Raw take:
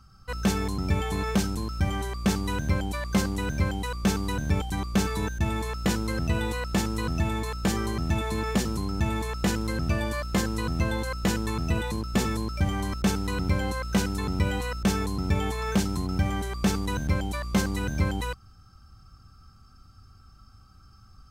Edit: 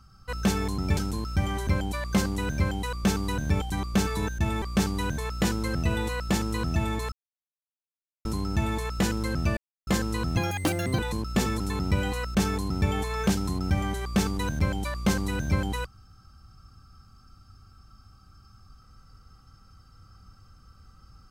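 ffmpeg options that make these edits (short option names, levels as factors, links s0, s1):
-filter_complex "[0:a]asplit=12[s0][s1][s2][s3][s4][s5][s6][s7][s8][s9][s10][s11];[s0]atrim=end=0.972[s12];[s1]atrim=start=1.408:end=2.112[s13];[s2]atrim=start=2.668:end=5.622[s14];[s3]atrim=start=2.108:end=2.672[s15];[s4]atrim=start=5.618:end=7.56,asetpts=PTS-STARTPTS,afade=t=out:st=1.938:d=0.004:c=hsin[s16];[s5]atrim=start=7.56:end=8.69,asetpts=PTS-STARTPTS,volume=0[s17];[s6]atrim=start=8.69:end=10.01,asetpts=PTS-STARTPTS,afade=t=in:d=0.004:c=hsin,afade=t=out:st=1.316:d=0.004:c=hsin[s18];[s7]atrim=start=10.01:end=10.31,asetpts=PTS-STARTPTS,volume=0[s19];[s8]atrim=start=10.31:end=10.814,asetpts=PTS-STARTPTS,afade=t=in:d=0.004:c=hsin[s20];[s9]atrim=start=10.81:end=11.78,asetpts=PTS-STARTPTS,asetrate=69237,aresample=44100,atrim=end_sample=27246,asetpts=PTS-STARTPTS[s21];[s10]atrim=start=11.776:end=12.392[s22];[s11]atrim=start=14.078[s23];[s12][s13]acrossfade=d=0.004:c1=hsin:c2=hsin[s24];[s24][s14]acrossfade=d=0.004:c1=hsin:c2=hsin[s25];[s25][s15]acrossfade=d=0.004:c1=hsin:c2=hsin[s26];[s16][s17][s18][s19][s20]concat=n=5:v=0:a=1[s27];[s26][s27]acrossfade=d=0.004:c1=hsin:c2=hsin[s28];[s28][s21]acrossfade=d=0.004:c1=hsin:c2=hsin[s29];[s29][s22]acrossfade=d=0.004:c1=hsin:c2=hsin[s30];[s30][s23]acrossfade=d=0.004:c1=hsin:c2=hsin"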